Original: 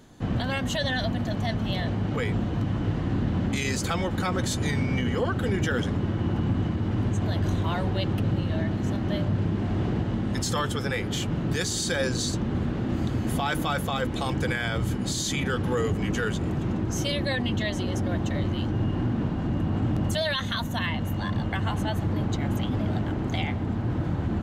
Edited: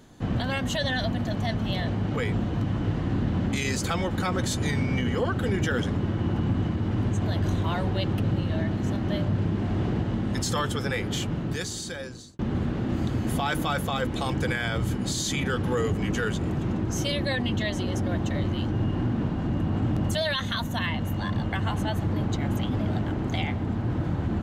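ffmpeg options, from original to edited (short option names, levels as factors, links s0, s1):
-filter_complex "[0:a]asplit=2[s0][s1];[s0]atrim=end=12.39,asetpts=PTS-STARTPTS,afade=t=out:st=11.16:d=1.23[s2];[s1]atrim=start=12.39,asetpts=PTS-STARTPTS,afade=t=in:d=0.004:c=hsin[s3];[s2][s3]concat=n=2:v=0:a=1"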